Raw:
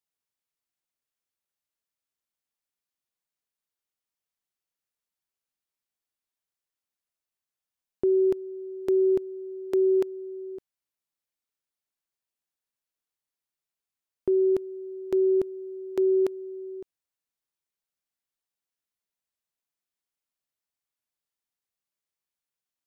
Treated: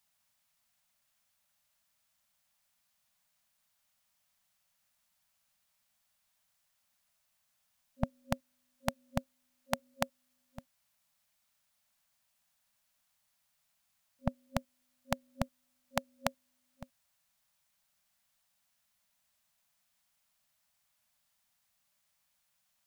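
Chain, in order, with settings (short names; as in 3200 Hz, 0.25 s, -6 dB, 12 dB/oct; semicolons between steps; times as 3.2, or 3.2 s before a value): FFT band-reject 250–540 Hz; gain +13 dB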